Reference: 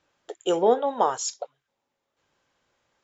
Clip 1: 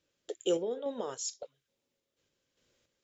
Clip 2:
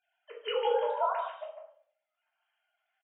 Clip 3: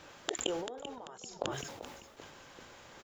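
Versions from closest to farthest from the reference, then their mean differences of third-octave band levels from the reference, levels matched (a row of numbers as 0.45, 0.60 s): 1, 2, 3; 3.5, 10.0, 13.0 dB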